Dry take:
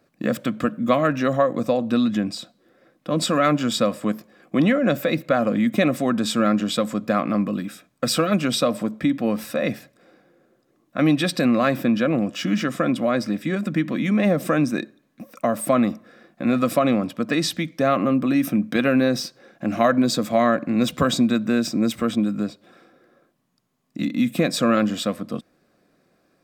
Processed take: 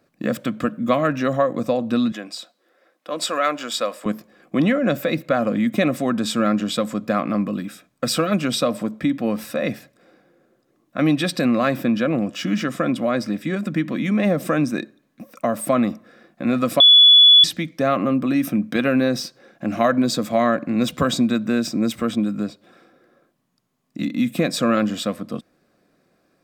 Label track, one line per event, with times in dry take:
2.120000	4.060000	high-pass 510 Hz
16.800000	17.440000	bleep 3.42 kHz -6.5 dBFS

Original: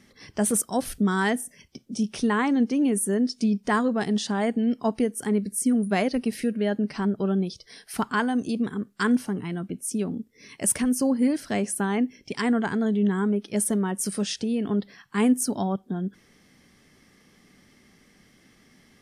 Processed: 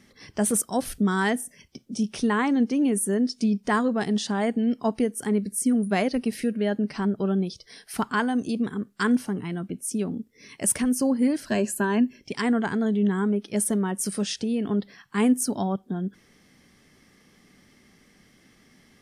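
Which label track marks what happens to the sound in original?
11.460000	12.200000	rippled EQ curve crests per octave 1.4, crest to trough 11 dB

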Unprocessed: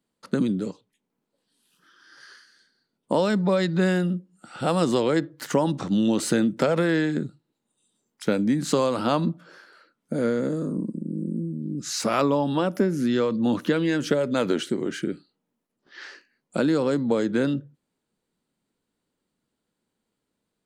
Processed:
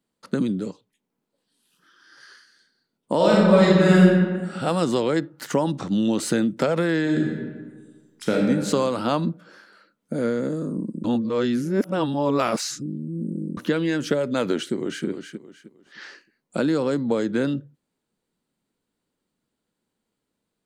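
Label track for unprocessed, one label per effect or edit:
3.160000	4.560000	reverb throw, RT60 1.5 s, DRR -6 dB
7.010000	8.420000	reverb throw, RT60 1.5 s, DRR -1.5 dB
11.040000	13.570000	reverse
14.580000	15.060000	echo throw 310 ms, feedback 30%, level -7.5 dB

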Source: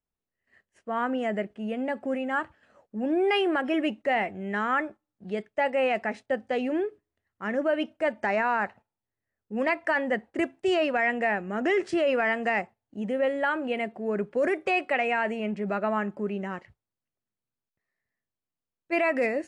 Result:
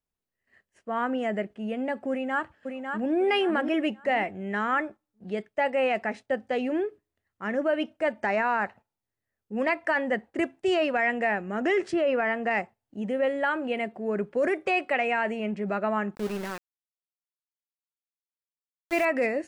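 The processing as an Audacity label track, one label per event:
2.100000	3.130000	echo throw 550 ms, feedback 30%, level -5.5 dB
11.920000	12.510000	treble shelf 3.9 kHz -11.5 dB
16.150000	19.050000	small samples zeroed under -34 dBFS

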